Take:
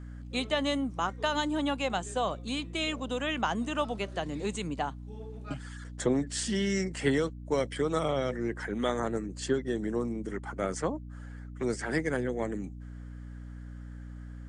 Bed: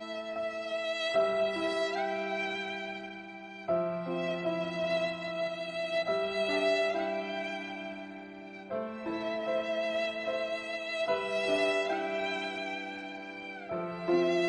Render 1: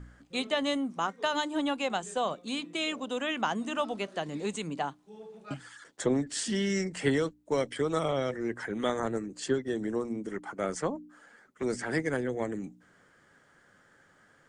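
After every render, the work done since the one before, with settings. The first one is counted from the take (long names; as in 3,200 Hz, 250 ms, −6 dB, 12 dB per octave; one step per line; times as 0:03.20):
hum removal 60 Hz, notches 5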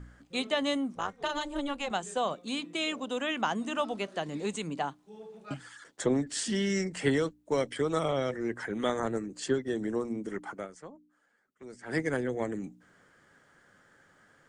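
0:00.95–0:01.91: amplitude modulation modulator 280 Hz, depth 65%
0:10.52–0:11.98: duck −15.5 dB, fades 0.16 s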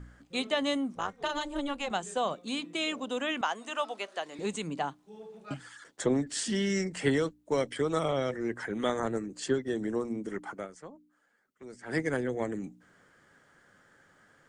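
0:03.41–0:04.39: high-pass filter 540 Hz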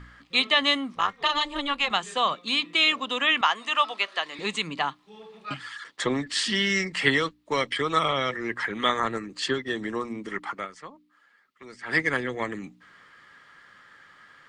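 flat-topped bell 2,200 Hz +13 dB 2.6 octaves
notch filter 1,500 Hz, Q 7.4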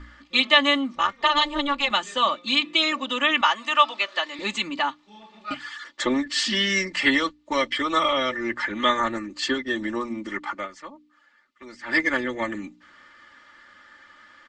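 Butterworth low-pass 7,900 Hz 48 dB per octave
comb filter 3.4 ms, depth 91%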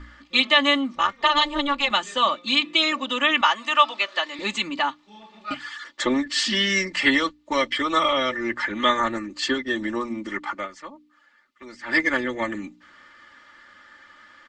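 level +1 dB
brickwall limiter −3 dBFS, peak gain reduction 2.5 dB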